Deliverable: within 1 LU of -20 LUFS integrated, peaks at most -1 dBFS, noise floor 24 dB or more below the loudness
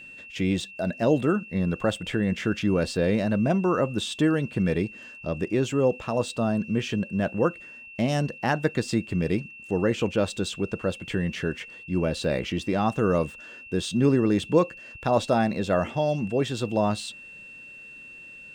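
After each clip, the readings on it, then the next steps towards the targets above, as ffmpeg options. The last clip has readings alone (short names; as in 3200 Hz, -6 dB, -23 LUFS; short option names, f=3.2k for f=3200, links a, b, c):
steady tone 2700 Hz; tone level -42 dBFS; loudness -26.0 LUFS; peak -8.5 dBFS; loudness target -20.0 LUFS
-> -af "bandreject=f=2.7k:w=30"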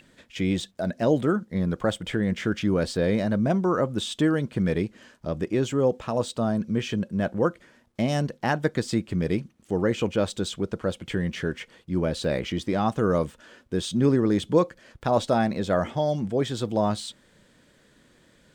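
steady tone none; loudness -26.0 LUFS; peak -8.5 dBFS; loudness target -20.0 LUFS
-> -af "volume=6dB"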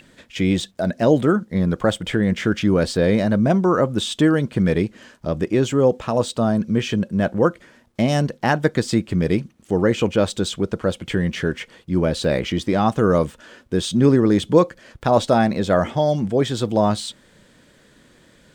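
loudness -20.0 LUFS; peak -2.5 dBFS; noise floor -54 dBFS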